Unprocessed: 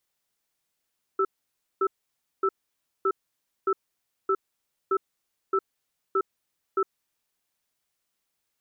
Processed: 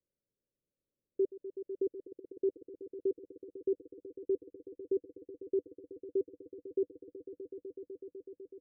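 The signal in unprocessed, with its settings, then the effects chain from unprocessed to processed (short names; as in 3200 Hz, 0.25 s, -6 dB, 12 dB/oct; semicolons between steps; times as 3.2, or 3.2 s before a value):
cadence 388 Hz, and 1320 Hz, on 0.06 s, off 0.56 s, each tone -23 dBFS 5.81 s
Chebyshev low-pass 590 Hz, order 8; on a send: swelling echo 0.125 s, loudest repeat 5, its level -11 dB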